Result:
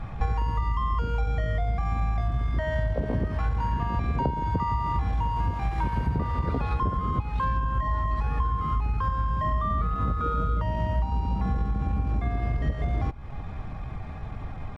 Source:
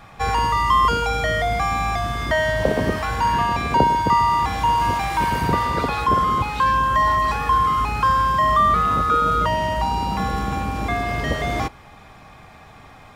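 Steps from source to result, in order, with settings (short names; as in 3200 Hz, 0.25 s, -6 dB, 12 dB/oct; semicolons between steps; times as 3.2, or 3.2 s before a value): RIAA curve playback; compressor 16:1, threshold -22 dBFS, peak gain reduction 18.5 dB; tempo 0.89×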